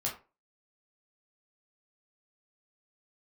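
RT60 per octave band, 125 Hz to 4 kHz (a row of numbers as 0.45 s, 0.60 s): 0.30 s, 0.30 s, 0.35 s, 0.30 s, 0.25 s, 0.20 s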